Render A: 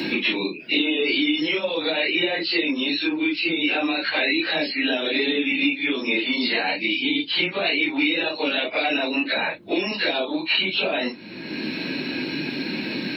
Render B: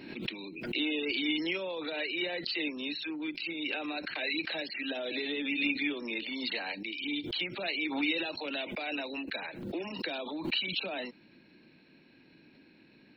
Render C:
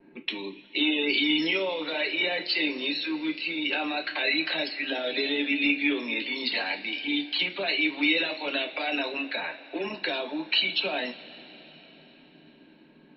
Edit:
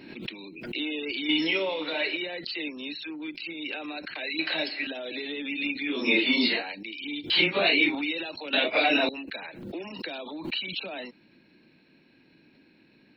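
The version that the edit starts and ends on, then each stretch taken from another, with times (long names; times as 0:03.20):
B
0:01.29–0:02.17: punch in from C
0:04.39–0:04.87: punch in from C
0:05.94–0:06.57: punch in from A, crossfade 0.24 s
0:07.30–0:07.95: punch in from A
0:08.53–0:09.09: punch in from A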